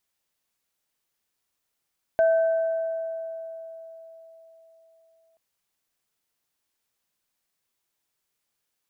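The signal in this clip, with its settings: sine partials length 3.18 s, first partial 655 Hz, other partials 1.54 kHz, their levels -15 dB, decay 4.09 s, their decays 2.11 s, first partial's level -15.5 dB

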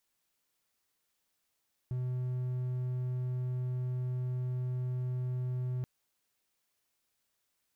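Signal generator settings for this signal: tone triangle 126 Hz -29.5 dBFS 3.93 s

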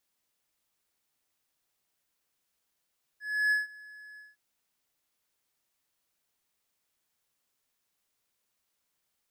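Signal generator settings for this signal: ADSR triangle 1.7 kHz, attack 312 ms, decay 156 ms, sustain -24 dB, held 0.98 s, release 180 ms -20 dBFS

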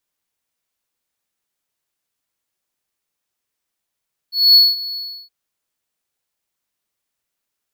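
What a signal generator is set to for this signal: ADSR triangle 4.39 kHz, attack 230 ms, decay 204 ms, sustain -18.5 dB, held 0.64 s, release 330 ms -3 dBFS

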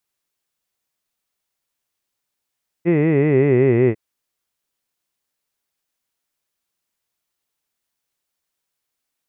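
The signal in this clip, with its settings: formant-synthesis vowel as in hid, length 1.10 s, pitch 164 Hz, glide -6 st, vibrato depth 1.3 st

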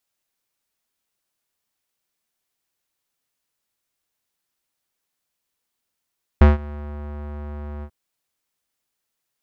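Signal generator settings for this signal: synth note square D2 12 dB/octave, low-pass 1.3 kHz, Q 0.92, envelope 0.5 oct, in 0.53 s, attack 3.7 ms, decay 0.16 s, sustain -24 dB, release 0.07 s, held 1.42 s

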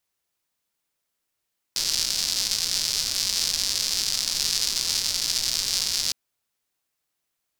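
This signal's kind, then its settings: rain from filtered ticks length 4.36 s, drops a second 240, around 4.9 kHz, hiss -17 dB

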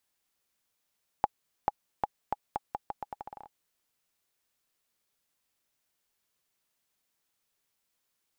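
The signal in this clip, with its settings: bouncing ball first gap 0.44 s, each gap 0.81, 831 Hz, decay 30 ms -11 dBFS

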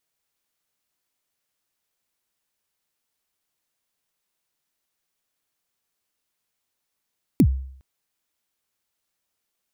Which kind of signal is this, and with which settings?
kick drum length 0.41 s, from 330 Hz, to 66 Hz, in 68 ms, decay 0.62 s, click on, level -9 dB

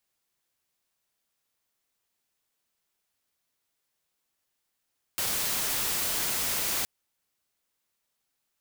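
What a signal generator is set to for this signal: noise white, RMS -29 dBFS 1.67 s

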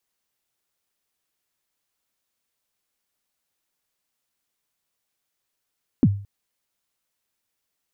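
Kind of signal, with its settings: kick drum length 0.22 s, from 310 Hz, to 100 Hz, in 47 ms, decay 0.43 s, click off, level -9 dB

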